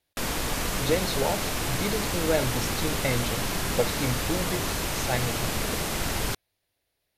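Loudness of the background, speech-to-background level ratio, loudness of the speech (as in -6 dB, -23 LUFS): -28.5 LUFS, -2.5 dB, -31.0 LUFS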